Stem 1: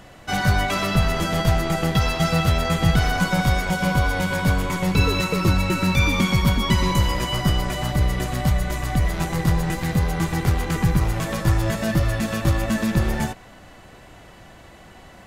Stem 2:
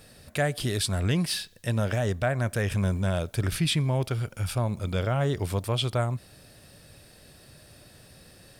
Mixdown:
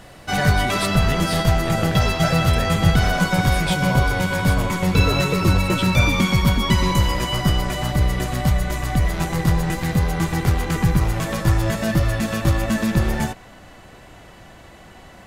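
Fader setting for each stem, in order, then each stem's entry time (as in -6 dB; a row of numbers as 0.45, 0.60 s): +1.5, -1.0 dB; 0.00, 0.00 s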